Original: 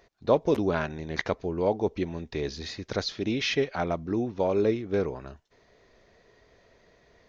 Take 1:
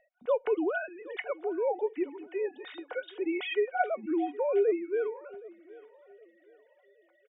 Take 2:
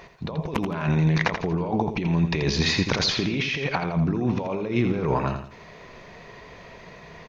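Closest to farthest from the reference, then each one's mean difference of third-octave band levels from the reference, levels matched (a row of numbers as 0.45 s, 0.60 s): 2, 1; 7.5 dB, 12.5 dB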